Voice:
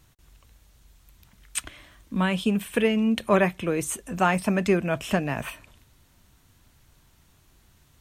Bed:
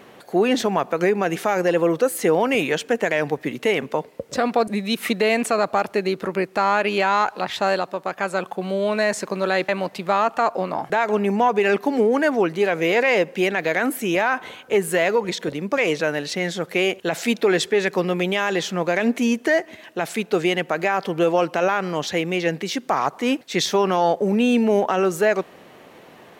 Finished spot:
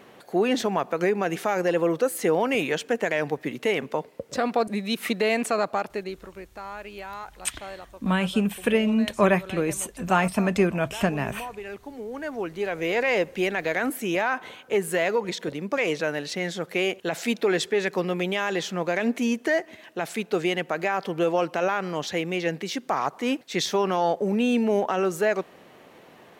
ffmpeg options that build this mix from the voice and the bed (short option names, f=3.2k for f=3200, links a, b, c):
-filter_complex "[0:a]adelay=5900,volume=0.5dB[a];[1:a]volume=10dB,afade=t=out:st=5.59:d=0.71:silence=0.188365,afade=t=in:st=12.04:d=1.11:silence=0.199526[b];[a][b]amix=inputs=2:normalize=0"